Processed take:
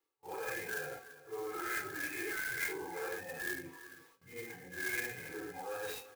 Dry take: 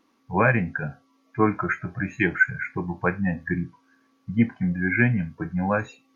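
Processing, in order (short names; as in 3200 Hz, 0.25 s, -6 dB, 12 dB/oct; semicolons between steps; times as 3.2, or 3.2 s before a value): phase scrambler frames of 0.2 s; bell 480 Hz +13 dB 1.2 oct; reverse; compressor 5:1, threshold -30 dBFS, peak gain reduction 20 dB; reverse; limiter -30 dBFS, peak gain reduction 11 dB; comb 2.4 ms, depth 95%; echo 0.336 s -15.5 dB; gate with hold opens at -46 dBFS; tilt +4.5 dB/oct; clock jitter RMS 0.043 ms; gain -3 dB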